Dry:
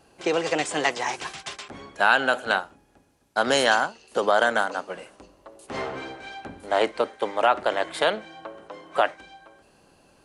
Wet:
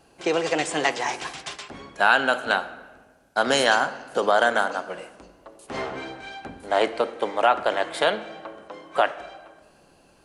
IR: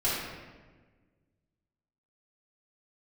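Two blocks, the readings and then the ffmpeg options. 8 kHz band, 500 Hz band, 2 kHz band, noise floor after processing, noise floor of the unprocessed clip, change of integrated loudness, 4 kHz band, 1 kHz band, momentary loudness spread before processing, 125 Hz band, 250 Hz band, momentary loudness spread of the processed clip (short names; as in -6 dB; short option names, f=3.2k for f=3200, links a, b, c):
+0.5 dB, +0.5 dB, +1.0 dB, -57 dBFS, -59 dBFS, +1.0 dB, +1.0 dB, +1.0 dB, 18 LU, +1.0 dB, +1.0 dB, 19 LU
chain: -filter_complex "[0:a]asplit=2[a][b];[1:a]atrim=start_sample=2205[c];[b][c]afir=irnorm=-1:irlink=0,volume=-22dB[d];[a][d]amix=inputs=2:normalize=0"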